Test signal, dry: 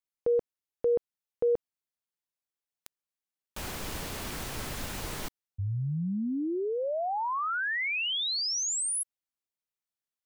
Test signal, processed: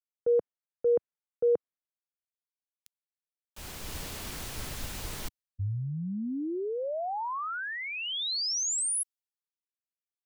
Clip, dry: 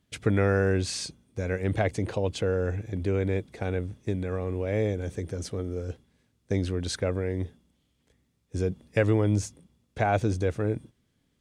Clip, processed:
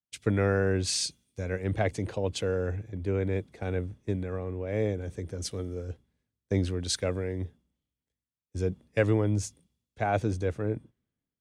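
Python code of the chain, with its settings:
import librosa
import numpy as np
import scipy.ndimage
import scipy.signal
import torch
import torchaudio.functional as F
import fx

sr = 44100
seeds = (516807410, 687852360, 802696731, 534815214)

p1 = fx.rider(x, sr, range_db=4, speed_s=0.5)
p2 = x + (p1 * 10.0 ** (-2.5 / 20.0))
p3 = fx.band_widen(p2, sr, depth_pct=70)
y = p3 * 10.0 ** (-7.0 / 20.0)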